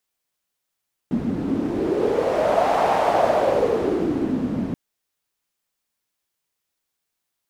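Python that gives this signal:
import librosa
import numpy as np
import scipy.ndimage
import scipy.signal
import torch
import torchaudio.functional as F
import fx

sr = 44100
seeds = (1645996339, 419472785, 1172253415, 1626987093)

y = fx.wind(sr, seeds[0], length_s=3.63, low_hz=230.0, high_hz=730.0, q=4.3, gusts=1, swing_db=6.0)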